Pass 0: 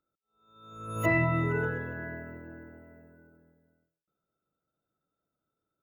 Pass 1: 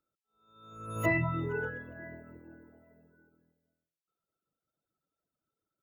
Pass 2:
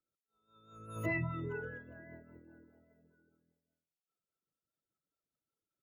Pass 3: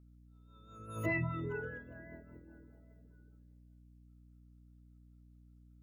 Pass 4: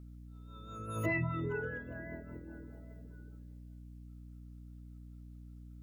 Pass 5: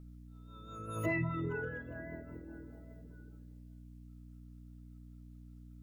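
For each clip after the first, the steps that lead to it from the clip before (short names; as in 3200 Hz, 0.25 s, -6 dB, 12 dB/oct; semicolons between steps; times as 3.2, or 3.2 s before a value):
reverb removal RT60 1.2 s; gain -1.5 dB
rotary speaker horn 5 Hz; gain -4.5 dB
hum 60 Hz, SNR 15 dB; gain +1 dB
compressor 1.5:1, threshold -56 dBFS, peak gain reduction 9.5 dB; gain +10 dB
shoebox room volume 840 m³, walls furnished, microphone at 0.61 m; gain -1 dB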